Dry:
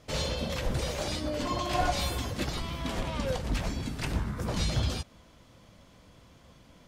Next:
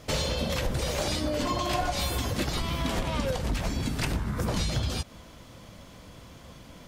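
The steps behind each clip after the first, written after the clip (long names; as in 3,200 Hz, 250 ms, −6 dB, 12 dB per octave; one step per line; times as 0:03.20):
high-shelf EQ 12,000 Hz +7 dB
downward compressor, threshold −33 dBFS, peak gain reduction 10.5 dB
level +8 dB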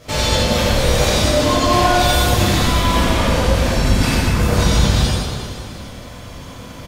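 on a send: reverse bouncing-ball delay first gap 90 ms, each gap 1.3×, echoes 5
on the sum: dense smooth reverb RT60 1.7 s, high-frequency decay 0.8×, pre-delay 0 ms, DRR −9.5 dB
level +2 dB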